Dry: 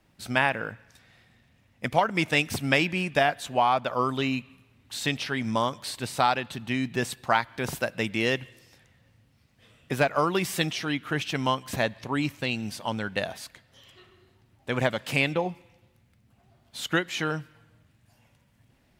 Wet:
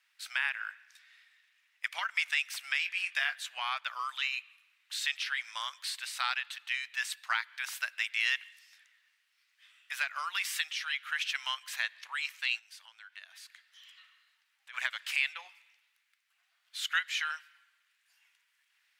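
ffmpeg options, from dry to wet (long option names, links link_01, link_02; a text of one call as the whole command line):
ffmpeg -i in.wav -filter_complex "[0:a]asettb=1/sr,asplit=3[link_01][link_02][link_03];[link_01]atrim=end=2.804[link_04];[link_02]atrim=start=2.8:end=3.4,asetpts=PTS-STARTPTS,afade=type=in:duration=0.004:curve=qsin,afade=type=out:start_time=0.596:duration=0.004:curve=qsin,asplit=2[link_05][link_06];[link_06]adelay=22,volume=-10dB[link_07];[link_05][link_07]amix=inputs=2:normalize=0,atrim=end_sample=26460[link_08];[link_03]atrim=start=3.396[link_09];[link_04][link_08]acrossfade=duration=0.004:curve1=hsin:curve2=qsin[link_10];[link_10][link_09]acrossfade=duration=0.004:curve1=qsin:curve2=hsin,asplit=3[link_11][link_12][link_13];[link_11]afade=type=out:start_time=12.58:duration=0.02[link_14];[link_12]acompressor=threshold=-48dB:ratio=2.5:attack=3.2:release=140:knee=1:detection=peak,afade=type=in:start_time=12.58:duration=0.02,afade=type=out:start_time=14.73:duration=0.02[link_15];[link_13]afade=type=in:start_time=14.73:duration=0.02[link_16];[link_14][link_15][link_16]amix=inputs=3:normalize=0,highpass=frequency=1500:width=0.5412,highpass=frequency=1500:width=1.3066,highshelf=frequency=4900:gain=-6.5,alimiter=limit=-18dB:level=0:latency=1:release=313,volume=1.5dB" out.wav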